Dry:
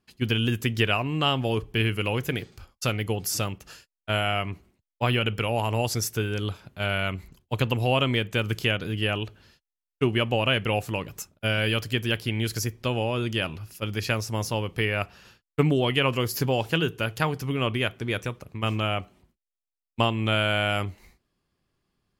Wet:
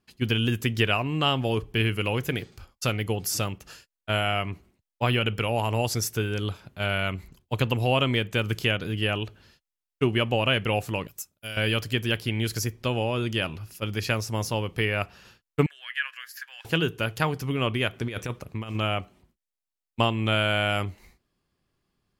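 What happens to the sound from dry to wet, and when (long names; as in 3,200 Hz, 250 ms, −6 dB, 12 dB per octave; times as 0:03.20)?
0:11.07–0:11.57: first-order pre-emphasis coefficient 0.8
0:15.66–0:16.65: four-pole ladder high-pass 1,600 Hz, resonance 85%
0:17.93–0:18.75: compressor whose output falls as the input rises −30 dBFS, ratio −0.5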